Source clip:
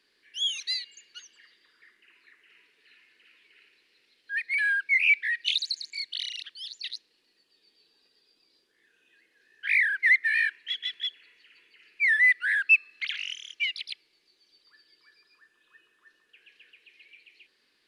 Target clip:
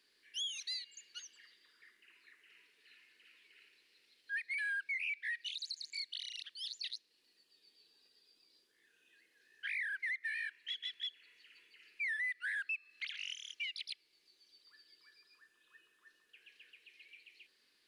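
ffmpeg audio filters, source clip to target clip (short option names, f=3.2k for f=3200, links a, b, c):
-af "highshelf=f=4.3k:g=8,alimiter=level_in=2dB:limit=-24dB:level=0:latency=1:release=324,volume=-2dB,volume=-6.5dB"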